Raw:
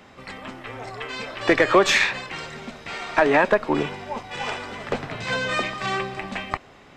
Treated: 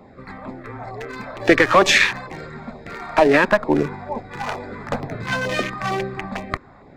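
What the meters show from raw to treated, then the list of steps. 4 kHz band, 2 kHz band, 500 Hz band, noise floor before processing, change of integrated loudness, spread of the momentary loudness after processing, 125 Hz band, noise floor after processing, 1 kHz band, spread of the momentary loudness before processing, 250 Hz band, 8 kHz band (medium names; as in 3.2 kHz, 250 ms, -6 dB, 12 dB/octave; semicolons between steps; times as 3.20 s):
+2.5 dB, +3.0 dB, +2.5 dB, -49 dBFS, +4.0 dB, 21 LU, +5.5 dB, -47 dBFS, +2.5 dB, 19 LU, +4.5 dB, +3.5 dB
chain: local Wiener filter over 15 samples; LFO notch saw down 2.2 Hz 300–1700 Hz; trim +5.5 dB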